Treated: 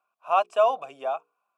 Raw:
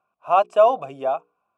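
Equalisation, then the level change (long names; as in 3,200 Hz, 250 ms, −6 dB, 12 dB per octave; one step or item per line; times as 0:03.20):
high-pass filter 1,100 Hz 6 dB per octave
0.0 dB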